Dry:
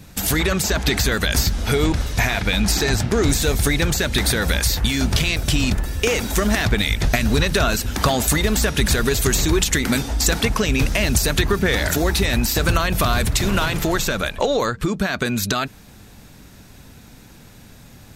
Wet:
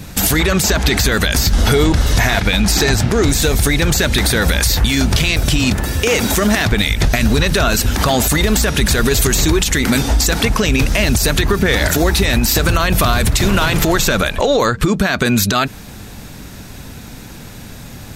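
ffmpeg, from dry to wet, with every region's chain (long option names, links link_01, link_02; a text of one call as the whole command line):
ffmpeg -i in.wav -filter_complex "[0:a]asettb=1/sr,asplit=3[link_01][link_02][link_03];[link_01]atrim=end=1.534[link_04];[link_02]atrim=start=1.53:end=2.4,asetpts=PTS-STARTPTS,afade=type=in:duration=0.004:curve=qsin,afade=type=out:start_time=0.866:duration=0.004:curve=qsin,acontrast=54,bandreject=frequency=2400:width=12[link_05];[link_03]atrim=start=2.396[link_06];[link_04][link_05]acrossfade=duration=0.004:curve1=hsin:curve2=qsin[link_07];[link_07][link_06]acrossfade=duration=0.004:curve1=qsin:curve2=hsin,asettb=1/sr,asplit=3[link_08][link_09][link_10];[link_08]atrim=end=5.594[link_11];[link_09]atrim=start=5.59:end=6.72,asetpts=PTS-STARTPTS,afade=type=in:duration=0.004:curve=qsin,afade=type=out:start_time=1.126:duration=0.004:curve=qsin,highpass=75,asoftclip=type=hard:threshold=-8dB[link_12];[link_10]atrim=start=6.716[link_13];[link_11][link_12]acrossfade=duration=0.004:curve1=hsin:curve2=qsin[link_14];[link_14][link_13]acrossfade=duration=0.004:curve1=qsin:curve2=hsin,acompressor=threshold=-20dB:ratio=6,alimiter=level_in=14dB:limit=-1dB:release=50:level=0:latency=1,volume=-3dB" out.wav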